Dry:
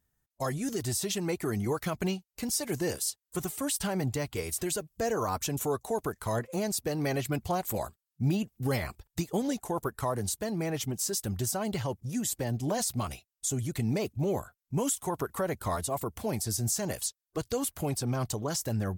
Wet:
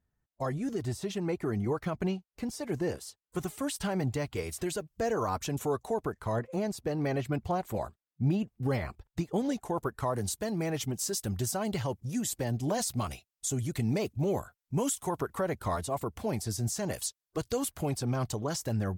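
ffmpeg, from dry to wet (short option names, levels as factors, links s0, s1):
-af "asetnsamples=n=441:p=0,asendcmd='3.36 lowpass f 3700;5.94 lowpass f 1800;9.36 lowpass f 3500;10.14 lowpass f 9000;15.19 lowpass f 4300;16.93 lowpass f 10000;17.72 lowpass f 5400',lowpass=f=1500:p=1"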